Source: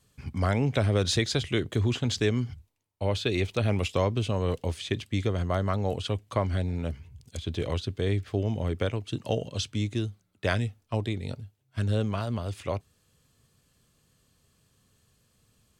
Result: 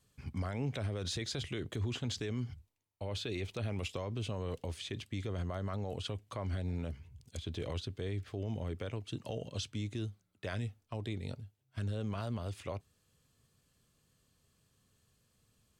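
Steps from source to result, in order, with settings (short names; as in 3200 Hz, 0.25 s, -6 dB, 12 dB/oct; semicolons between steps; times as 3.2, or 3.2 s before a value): limiter -22 dBFS, peak gain reduction 10 dB; gain -6 dB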